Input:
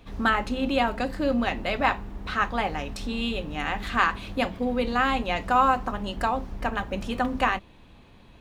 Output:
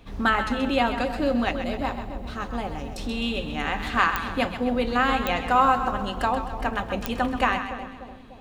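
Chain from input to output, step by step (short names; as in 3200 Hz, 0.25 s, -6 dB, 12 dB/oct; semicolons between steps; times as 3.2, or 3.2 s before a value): 1.51–2.98 bell 1800 Hz -12 dB 2.5 oct; split-band echo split 700 Hz, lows 0.296 s, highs 0.13 s, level -9 dB; pops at 4.16/5.27/7.06, -10 dBFS; gain +1 dB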